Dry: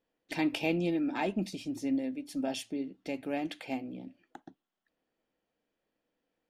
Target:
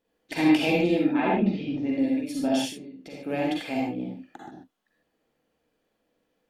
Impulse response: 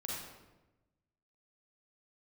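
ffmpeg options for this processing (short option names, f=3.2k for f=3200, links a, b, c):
-filter_complex "[0:a]asettb=1/sr,asplit=3[a][b][c];[a]atrim=end=1.054[d];[b]atrim=start=1.05:end=1.89,asetpts=PTS-STARTPTS,afade=t=in:d=0.004:c=qsin,afade=t=out:st=0.836:d=0.004:c=qsin,lowpass=f=3k:w=0.5412,lowpass=f=3k:w=1.3066[e];[c]atrim=start=1.886[f];[d][e]acrossfade=d=0.004:c1=hsin:c2=qsin[g];[g][f]acrossfade=d=0.004:c1=qsin:c2=hsin,asplit=3[h][i][j];[h]afade=t=out:st=2.68:d=0.02[k];[i]acompressor=threshold=-45dB:ratio=16,afade=t=in:st=2.68:d=0.02,afade=t=out:st=3.24:d=0.02[l];[j]afade=t=in:st=3.24:d=0.02[m];[k][l][m]amix=inputs=3:normalize=0[n];[1:a]atrim=start_sample=2205,atrim=end_sample=6174,asetrate=39690,aresample=44100[o];[n][o]afir=irnorm=-1:irlink=0,volume=7.5dB"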